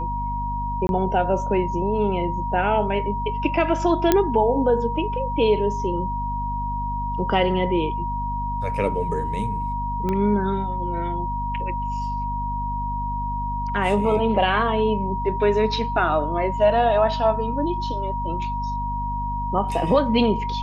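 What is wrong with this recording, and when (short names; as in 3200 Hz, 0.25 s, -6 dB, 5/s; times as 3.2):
hum 50 Hz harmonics 5 -29 dBFS
tone 950 Hz -26 dBFS
0.87–0.89 gap 21 ms
4.12 pop -3 dBFS
10.09 pop -14 dBFS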